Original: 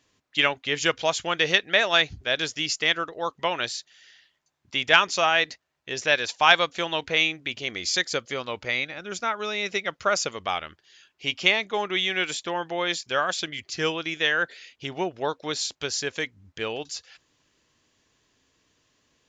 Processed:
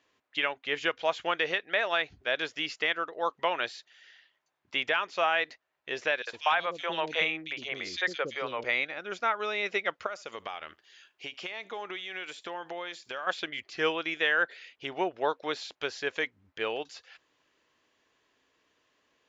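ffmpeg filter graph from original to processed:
-filter_complex "[0:a]asettb=1/sr,asplit=3[s0][s1][s2];[s0]atrim=end=6.224[s3];[s1]atrim=start=6.22:end=8.64,asetpts=PTS-STARTPTS,afade=t=in:d=0.004:c=qsin,afade=t=out:st=2.416:d=0.004:c=qsin,bass=f=250:g=4,treble=f=4000:g=2,acrossover=split=410|2900[s4][s5][s6];[s5]adelay=50[s7];[s4]adelay=110[s8];[s8][s7][s6]amix=inputs=3:normalize=0,atrim=end_sample=106722[s9];[s2]atrim=start=8.636[s10];[s3][s9]acrossfade=d=0.004:c1=hsin:c2=qsin[s11];[s11][s10]acrossfade=d=0.004:c1=qsin:c2=hsin,asettb=1/sr,asplit=3[s12][s13][s14];[s12]atrim=end=10.064[s15];[s13]atrim=start=10.06:end=13.27,asetpts=PTS-STARTPTS,afade=t=in:d=0.004:c=qsin,afade=t=out:st=3.206:d=0.004:c=qsin,highshelf=f=7100:g=12,acompressor=threshold=0.0251:ratio=8:attack=3.2:release=140:knee=1:detection=peak,aecho=1:1:75:0.0668,atrim=end_sample=141561[s16];[s14]atrim=start=13.266[s17];[s15][s16]acrossfade=d=0.004:c1=hsin:c2=qsin[s18];[s18][s17]acrossfade=d=0.004:c1=qsin:c2=hsin,acrossover=split=4100[s19][s20];[s20]acompressor=threshold=0.01:ratio=4:attack=1:release=60[s21];[s19][s21]amix=inputs=2:normalize=0,bass=f=250:g=-14,treble=f=4000:g=-12,alimiter=limit=0.188:level=0:latency=1:release=416"

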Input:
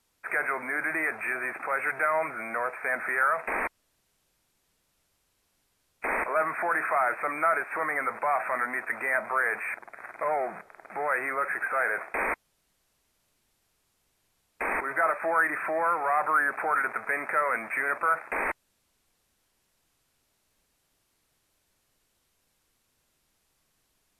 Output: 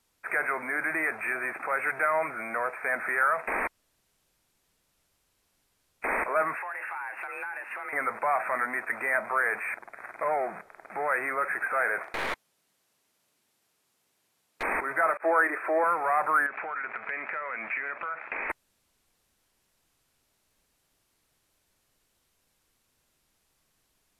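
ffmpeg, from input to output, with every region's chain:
-filter_complex "[0:a]asettb=1/sr,asplit=3[s0][s1][s2];[s0]atrim=end=6.574[s3];[s1]atrim=start=6.57:end=7.93,asetpts=PTS-STARTPTS,afade=t=in:d=0.004:c=qsin,afade=t=out:st=1.356:d=0.004:c=qsin,asubboost=boost=7:cutoff=190,acompressor=threshold=0.0224:ratio=6:attack=3.2:release=140:knee=1:detection=peak,afreqshift=190[s4];[s2]atrim=start=7.926[s5];[s3][s4]acrossfade=d=0.004:c1=hsin:c2=qsin[s6];[s6][s5]acrossfade=d=0.004:c1=qsin:c2=hsin,asettb=1/sr,asplit=3[s7][s8][s9];[s7]atrim=end=12.034[s10];[s8]atrim=start=12.03:end=14.63,asetpts=PTS-STARTPTS,afade=t=in:d=0.004:c=qsin,afade=t=out:st=2.596:d=0.004:c=qsin,highpass=170,aeval=exprs='clip(val(0),-1,0.015)':c=same[s11];[s9]atrim=start=14.626[s12];[s10][s11]acrossfade=d=0.004:c1=hsin:c2=qsin[s13];[s13][s12]acrossfade=d=0.004:c1=qsin:c2=hsin,asettb=1/sr,asplit=3[s14][s15][s16];[s14]atrim=end=15.174[s17];[s15]atrim=start=15.17:end=15.84,asetpts=PTS-STARTPTS,afade=t=in:d=0.004:c=qsin,afade=t=out:st=0.666:d=0.004:c=qsin,agate=range=0.0224:threshold=0.0316:ratio=3:release=100:detection=peak,highpass=f=380:t=q:w=2.4,highshelf=f=5400:g=-3.5[s18];[s16]atrim=start=15.836[s19];[s17][s18]acrossfade=d=0.004:c1=hsin:c2=qsin[s20];[s20][s19]acrossfade=d=0.004:c1=qsin:c2=hsin,asettb=1/sr,asplit=3[s21][s22][s23];[s21]atrim=end=16.464[s24];[s22]atrim=start=16.46:end=18.5,asetpts=PTS-STARTPTS,afade=t=in:d=0.004:c=qsin,afade=t=out:st=2.036:d=0.004:c=qsin,equalizer=f=71:w=0.96:g=-6,acompressor=threshold=0.0158:ratio=3:attack=3.2:release=140:knee=1:detection=peak,lowpass=f=2900:t=q:w=4.4[s25];[s23]atrim=start=18.496[s26];[s24][s25]acrossfade=d=0.004:c1=hsin:c2=qsin[s27];[s27][s26]acrossfade=d=0.004:c1=qsin:c2=hsin"

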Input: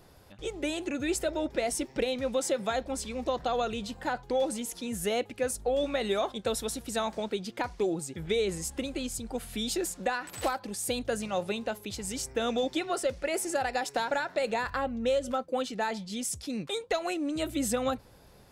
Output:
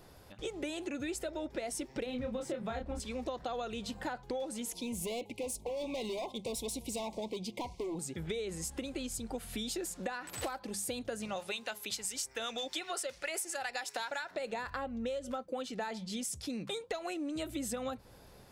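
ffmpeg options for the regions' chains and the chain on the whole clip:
-filter_complex "[0:a]asettb=1/sr,asplit=3[s0][s1][s2];[s0]atrim=end=2.064[s3];[s1]atrim=start=2.06:end=3,asetpts=PTS-STARTPTS,afade=t=in:d=0.004:c=qsin,afade=t=out:st=0.936:d=0.004:c=qsin,asplit=2[s4][s5];[s5]adelay=28,volume=0.631[s6];[s4][s6]amix=inputs=2:normalize=0,atrim=end_sample=41454,aeval=exprs='sgn(val(0))*max(abs(val(0))-0.00266,0)':c=same,bass=f=250:g=10,treble=f=4000:g=-10[s7];[s2]atrim=start=2.996[s8];[s3][s7]acrossfade=d=0.004:c1=hsin:c2=qsin[s9];[s9][s8]acrossfade=d=0.004:c1=qsin:c2=hsin,asettb=1/sr,asplit=3[s10][s11][s12];[s10]atrim=end=4.734[s13];[s11]atrim=start=4.73:end=7.99,asetpts=PTS-STARTPTS,afade=t=in:d=0.004:c=qsin,afade=t=out:st=3.256:d=0.004:c=qsin,asoftclip=type=hard:threshold=0.0299,asuperstop=centerf=1500:order=12:qfactor=1.5[s14];[s12]atrim=start=7.986[s15];[s13][s14]acrossfade=d=0.004:c1=hsin:c2=qsin[s16];[s16][s15]acrossfade=d=0.004:c1=qsin:c2=hsin,asettb=1/sr,asplit=3[s17][s18][s19];[s17]atrim=end=11.364[s20];[s18]atrim=start=11.36:end=14.31,asetpts=PTS-STARTPTS,afade=t=in:d=0.004:c=qsin,afade=t=out:st=2.946:d=0.004:c=qsin,tiltshelf=f=660:g=-9,acrossover=split=800[s21][s22];[s21]aeval=exprs='val(0)*(1-0.5/2+0.5/2*cos(2*PI*7.6*n/s))':c=same[s23];[s22]aeval=exprs='val(0)*(1-0.5/2-0.5/2*cos(2*PI*7.6*n/s))':c=same[s24];[s23][s24]amix=inputs=2:normalize=0[s25];[s19]atrim=start=14.306[s26];[s20][s25]acrossfade=d=0.004:c1=hsin:c2=qsin[s27];[s27][s26]acrossfade=d=0.004:c1=qsin:c2=hsin,bandreject=f=50:t=h:w=6,bandreject=f=100:t=h:w=6,bandreject=f=150:t=h:w=6,bandreject=f=200:t=h:w=6,acompressor=threshold=0.0178:ratio=6"

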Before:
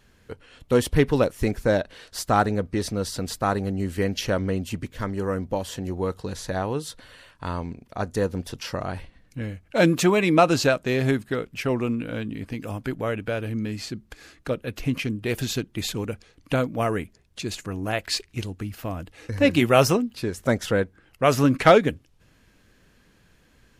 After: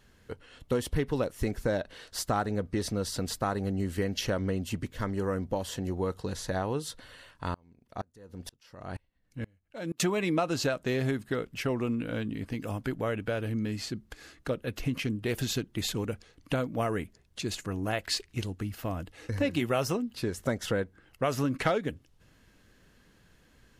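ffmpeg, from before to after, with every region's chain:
-filter_complex "[0:a]asettb=1/sr,asplit=3[s0][s1][s2];[s0]atrim=end=7.544[s3];[s1]atrim=start=7.54:end=10,asetpts=PTS-STARTPTS,afade=t=in:d=0.004:c=qsin,afade=t=out:st=2.456:d=0.004:c=qsin,acompressor=threshold=0.0562:ratio=5:attack=3.2:release=140:knee=1:detection=peak,aeval=exprs='val(0)*pow(10,-33*if(lt(mod(-2.1*n/s,1),2*abs(-2.1)/1000),1-mod(-2.1*n/s,1)/(2*abs(-2.1)/1000),(mod(-2.1*n/s,1)-2*abs(-2.1)/1000)/(1-2*abs(-2.1)/1000))/20)':c=same[s4];[s2]atrim=start=9.996[s5];[s3][s4]acrossfade=d=0.004:c1=hsin:c2=qsin[s6];[s6][s5]acrossfade=d=0.004:c1=qsin:c2=hsin,bandreject=f=2400:w=19,acompressor=threshold=0.0708:ratio=4,volume=0.75"

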